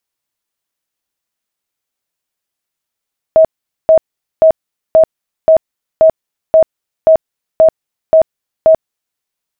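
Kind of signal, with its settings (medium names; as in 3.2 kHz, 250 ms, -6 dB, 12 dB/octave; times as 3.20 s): tone bursts 640 Hz, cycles 56, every 0.53 s, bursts 11, -2.5 dBFS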